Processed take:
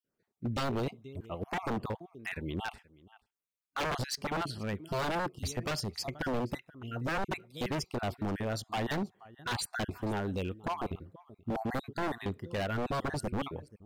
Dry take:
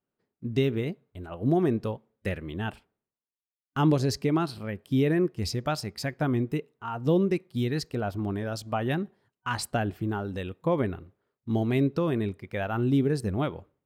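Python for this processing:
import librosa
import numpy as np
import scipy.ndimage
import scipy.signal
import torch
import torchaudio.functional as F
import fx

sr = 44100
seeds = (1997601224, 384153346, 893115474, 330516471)

y = fx.spec_dropout(x, sr, seeds[0], share_pct=33)
y = y + 10.0 ** (-23.5 / 20.0) * np.pad(y, (int(479 * sr / 1000.0), 0))[:len(y)]
y = 10.0 ** (-27.0 / 20.0) * (np.abs((y / 10.0 ** (-27.0 / 20.0) + 3.0) % 4.0 - 2.0) - 1.0)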